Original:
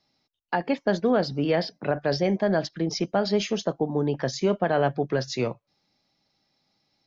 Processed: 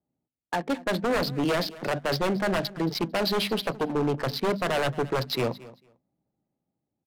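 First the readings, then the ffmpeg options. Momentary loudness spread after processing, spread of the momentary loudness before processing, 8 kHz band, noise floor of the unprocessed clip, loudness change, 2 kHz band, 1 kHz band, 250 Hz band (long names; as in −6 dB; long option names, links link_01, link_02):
4 LU, 6 LU, can't be measured, −77 dBFS, −1.5 dB, +1.5 dB, −0.5 dB, −2.5 dB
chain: -filter_complex "[0:a]highpass=46,bandreject=frequency=50:width_type=h:width=6,bandreject=frequency=100:width_type=h:width=6,bandreject=frequency=150:width_type=h:width=6,bandreject=frequency=200:width_type=h:width=6,bandreject=frequency=250:width_type=h:width=6,adynamicequalizer=threshold=0.00282:dfrequency=4000:dqfactor=3.8:tfrequency=4000:tqfactor=3.8:attack=5:release=100:ratio=0.375:range=3.5:mode=boostabove:tftype=bell,dynaudnorm=framelen=170:gausssize=9:maxgain=4dB,aresample=11025,aeval=exprs='0.15*(abs(mod(val(0)/0.15+3,4)-2)-1)':channel_layout=same,aresample=44100,adynamicsmooth=sensitivity=7.5:basefreq=510,asplit=2[link_01][link_02];[link_02]aecho=0:1:224|448:0.112|0.018[link_03];[link_01][link_03]amix=inputs=2:normalize=0,volume=-2.5dB"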